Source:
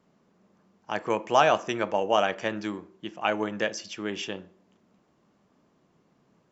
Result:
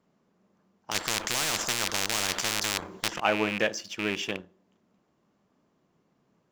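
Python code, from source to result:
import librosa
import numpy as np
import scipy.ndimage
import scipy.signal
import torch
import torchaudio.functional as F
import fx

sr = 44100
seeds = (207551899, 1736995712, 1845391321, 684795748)

y = fx.rattle_buzz(x, sr, strikes_db=-38.0, level_db=-20.0)
y = fx.leveller(y, sr, passes=1)
y = fx.spectral_comp(y, sr, ratio=10.0, at=(0.91, 3.2))
y = y * librosa.db_to_amplitude(-2.5)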